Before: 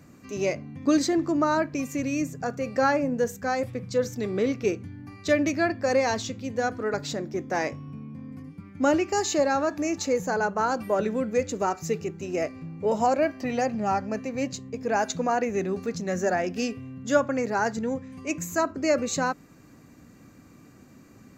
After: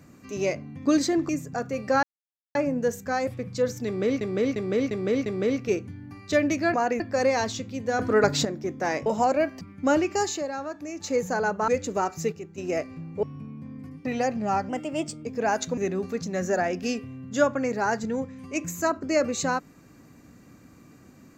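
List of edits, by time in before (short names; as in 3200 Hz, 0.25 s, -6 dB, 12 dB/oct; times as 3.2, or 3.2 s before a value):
1.29–2.17 cut
2.91 insert silence 0.52 s
4.22–4.57 loop, 5 plays
6.69–7.15 gain +8 dB
7.76–8.58 swap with 12.88–13.43
9.2–10.13 dip -8.5 dB, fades 0.20 s
10.65–11.33 cut
11.97–12.23 gain -7 dB
14.07–14.73 speed 117%
15.25–15.51 move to 5.7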